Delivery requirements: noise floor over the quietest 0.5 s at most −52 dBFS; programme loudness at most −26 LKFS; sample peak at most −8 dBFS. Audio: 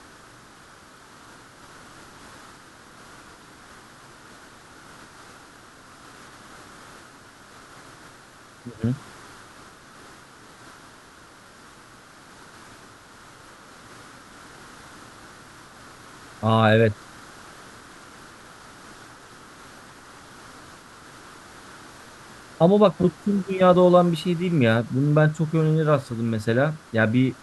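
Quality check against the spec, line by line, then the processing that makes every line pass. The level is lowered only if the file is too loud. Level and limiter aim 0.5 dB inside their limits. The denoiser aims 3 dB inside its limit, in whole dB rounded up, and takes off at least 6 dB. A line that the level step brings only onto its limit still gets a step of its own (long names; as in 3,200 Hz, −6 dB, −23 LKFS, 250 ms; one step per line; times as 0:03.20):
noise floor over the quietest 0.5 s −48 dBFS: out of spec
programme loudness −20.5 LKFS: out of spec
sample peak −4.5 dBFS: out of spec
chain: level −6 dB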